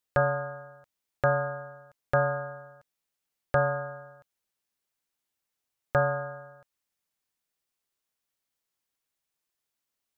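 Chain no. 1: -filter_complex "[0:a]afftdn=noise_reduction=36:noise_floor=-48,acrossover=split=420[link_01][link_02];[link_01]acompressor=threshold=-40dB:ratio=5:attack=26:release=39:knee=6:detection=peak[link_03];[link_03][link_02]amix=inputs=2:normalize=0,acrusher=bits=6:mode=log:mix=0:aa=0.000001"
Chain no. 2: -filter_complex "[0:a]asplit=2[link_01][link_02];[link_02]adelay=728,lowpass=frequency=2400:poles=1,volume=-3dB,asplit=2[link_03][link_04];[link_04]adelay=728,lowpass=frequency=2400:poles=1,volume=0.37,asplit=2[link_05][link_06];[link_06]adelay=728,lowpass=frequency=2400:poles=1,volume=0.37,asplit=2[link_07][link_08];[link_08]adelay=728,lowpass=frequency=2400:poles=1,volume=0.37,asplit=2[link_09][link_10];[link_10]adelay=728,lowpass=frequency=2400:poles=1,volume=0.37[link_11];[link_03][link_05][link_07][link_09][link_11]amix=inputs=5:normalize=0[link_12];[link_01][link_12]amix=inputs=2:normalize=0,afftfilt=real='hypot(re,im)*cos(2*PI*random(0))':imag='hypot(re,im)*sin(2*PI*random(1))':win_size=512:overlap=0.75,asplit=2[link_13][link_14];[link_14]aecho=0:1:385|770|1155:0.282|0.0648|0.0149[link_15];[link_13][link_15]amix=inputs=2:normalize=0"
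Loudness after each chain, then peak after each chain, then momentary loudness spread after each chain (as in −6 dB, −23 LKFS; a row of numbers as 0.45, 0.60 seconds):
−30.5, −36.5 LKFS; −13.0, −16.5 dBFS; 17, 21 LU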